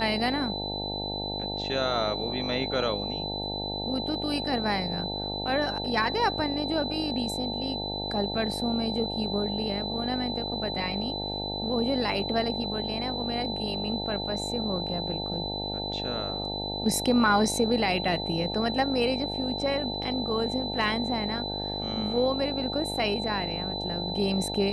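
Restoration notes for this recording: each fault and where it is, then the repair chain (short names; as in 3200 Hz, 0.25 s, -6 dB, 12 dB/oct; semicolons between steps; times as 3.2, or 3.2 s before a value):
buzz 50 Hz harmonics 18 -35 dBFS
tone 4000 Hz -33 dBFS
20.03 gap 2.4 ms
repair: de-hum 50 Hz, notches 18; notch 4000 Hz, Q 30; interpolate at 20.03, 2.4 ms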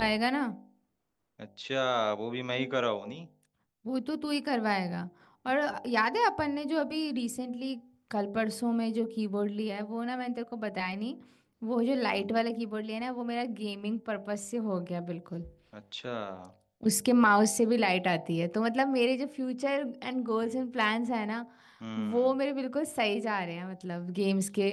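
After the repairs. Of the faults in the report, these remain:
none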